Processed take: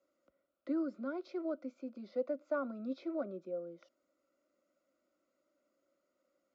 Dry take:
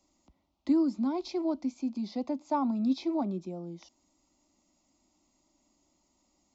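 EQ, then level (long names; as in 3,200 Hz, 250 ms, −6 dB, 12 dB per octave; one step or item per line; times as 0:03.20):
pair of resonant band-passes 870 Hz, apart 1.4 octaves
+7.5 dB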